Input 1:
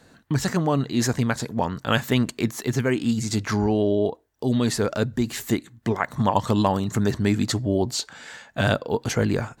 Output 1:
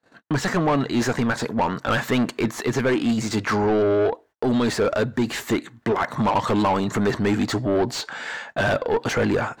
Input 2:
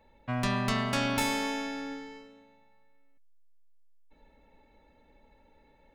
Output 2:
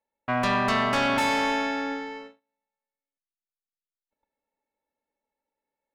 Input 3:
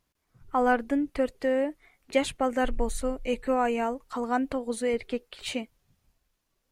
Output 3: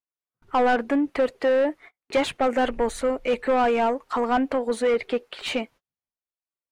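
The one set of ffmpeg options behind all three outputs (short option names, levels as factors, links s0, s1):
-filter_complex "[0:a]agate=range=0.02:threshold=0.00282:ratio=16:detection=peak,asplit=2[s0][s1];[s1]highpass=f=720:p=1,volume=20,asoftclip=type=tanh:threshold=0.531[s2];[s0][s2]amix=inputs=2:normalize=0,lowpass=f=1500:p=1,volume=0.501,volume=0.562"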